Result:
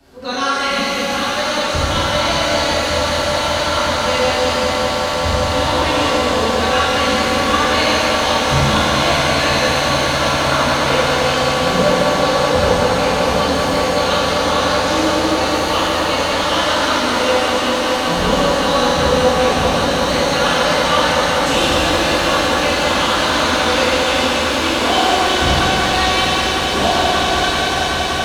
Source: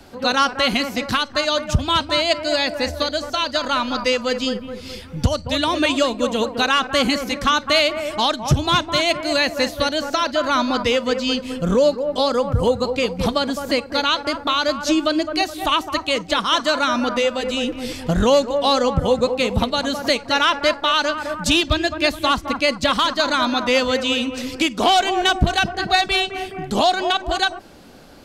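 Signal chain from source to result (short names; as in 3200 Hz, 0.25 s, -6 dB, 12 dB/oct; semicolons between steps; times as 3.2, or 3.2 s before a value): on a send: swelling echo 0.192 s, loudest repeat 8, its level -12 dB; on the sum: shimmer reverb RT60 3.2 s, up +7 st, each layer -8 dB, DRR -11.5 dB; gain -11 dB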